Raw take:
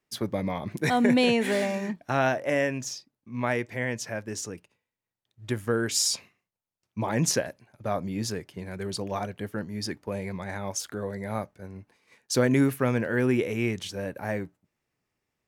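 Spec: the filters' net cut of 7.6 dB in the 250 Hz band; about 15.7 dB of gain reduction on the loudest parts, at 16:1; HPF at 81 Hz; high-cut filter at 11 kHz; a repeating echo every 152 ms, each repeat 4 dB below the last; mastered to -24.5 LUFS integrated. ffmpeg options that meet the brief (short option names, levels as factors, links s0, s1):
-af "highpass=81,lowpass=11000,equalizer=f=250:t=o:g=-9,acompressor=threshold=0.0158:ratio=16,aecho=1:1:152|304|456|608|760|912|1064|1216|1368:0.631|0.398|0.25|0.158|0.0994|0.0626|0.0394|0.0249|0.0157,volume=5.62"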